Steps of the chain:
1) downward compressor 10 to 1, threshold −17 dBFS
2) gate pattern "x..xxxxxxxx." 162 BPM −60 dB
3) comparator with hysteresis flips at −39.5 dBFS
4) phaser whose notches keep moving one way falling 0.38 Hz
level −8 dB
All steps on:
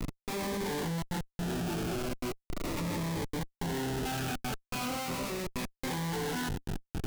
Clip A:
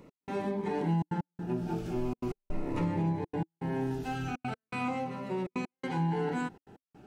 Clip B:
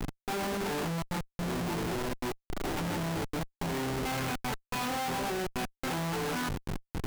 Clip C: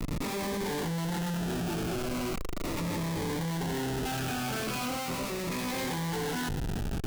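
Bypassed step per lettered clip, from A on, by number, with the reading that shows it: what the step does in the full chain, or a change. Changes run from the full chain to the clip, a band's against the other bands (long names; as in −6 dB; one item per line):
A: 3, distortion level −1 dB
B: 4, 1 kHz band +3.0 dB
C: 2, change in crest factor −2.5 dB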